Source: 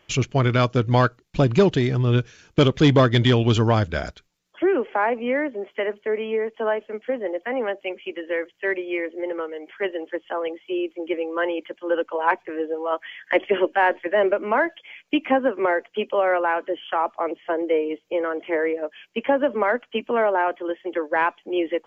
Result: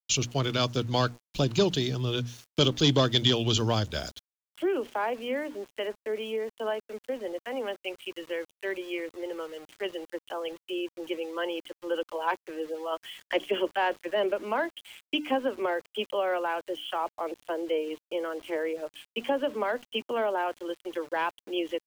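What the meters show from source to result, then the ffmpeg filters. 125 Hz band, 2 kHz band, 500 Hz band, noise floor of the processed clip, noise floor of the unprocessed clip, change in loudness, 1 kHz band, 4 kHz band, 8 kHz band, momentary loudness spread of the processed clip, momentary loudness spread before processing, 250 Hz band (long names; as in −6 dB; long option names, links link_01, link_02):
−9.5 dB, −9.0 dB, −7.5 dB, below −85 dBFS, −64 dBFS, −7.5 dB, −8.0 dB, +2.0 dB, can't be measured, 11 LU, 10 LU, −8.0 dB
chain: -filter_complex "[0:a]acrossover=split=120|400|1300[link_01][link_02][link_03][link_04];[link_04]aexciter=amount=6.9:drive=7.4:freq=3000[link_05];[link_01][link_02][link_03][link_05]amix=inputs=4:normalize=0,aresample=16000,aresample=44100,highshelf=frequency=4000:gain=-11.5,bandreject=frequency=60:width_type=h:width=6,bandreject=frequency=120:width_type=h:width=6,bandreject=frequency=180:width_type=h:width=6,bandreject=frequency=240:width_type=h:width=6,bandreject=frequency=300:width_type=h:width=6,aeval=exprs='val(0)*gte(abs(val(0)),0.0119)':channel_layout=same,volume=-7.5dB"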